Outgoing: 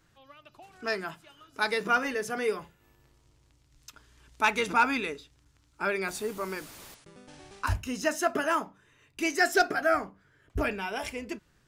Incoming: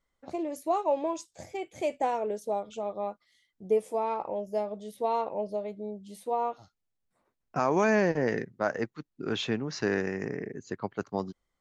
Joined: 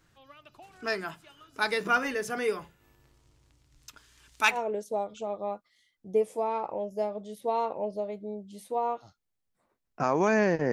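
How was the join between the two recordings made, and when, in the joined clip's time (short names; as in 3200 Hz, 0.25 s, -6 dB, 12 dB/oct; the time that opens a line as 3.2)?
outgoing
3.97–4.58 tilt shelf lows -5.5 dB, about 1300 Hz
4.54 switch to incoming from 2.1 s, crossfade 0.08 s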